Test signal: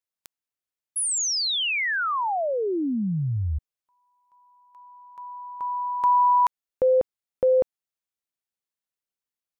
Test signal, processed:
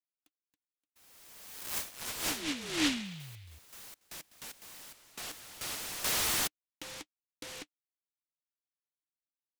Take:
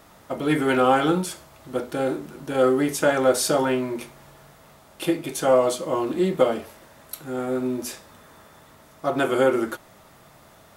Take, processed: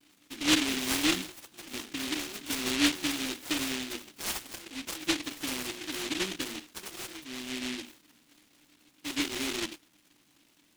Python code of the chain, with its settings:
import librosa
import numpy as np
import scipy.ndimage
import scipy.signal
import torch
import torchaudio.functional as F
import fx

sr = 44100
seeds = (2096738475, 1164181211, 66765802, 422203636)

y = fx.echo_pitch(x, sr, ms=354, semitones=6, count=3, db_per_echo=-6.0)
y = fx.vowel_filter(y, sr, vowel='u')
y = fx.vibrato(y, sr, rate_hz=0.34, depth_cents=19.0)
y = fx.noise_mod_delay(y, sr, seeds[0], noise_hz=2800.0, depth_ms=0.45)